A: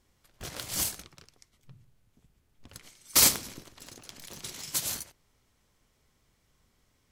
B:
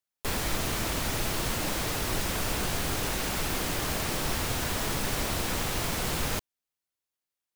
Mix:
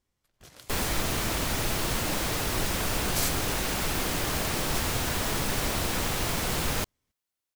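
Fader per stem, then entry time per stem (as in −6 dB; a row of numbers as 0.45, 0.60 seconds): −11.0, +1.5 decibels; 0.00, 0.45 seconds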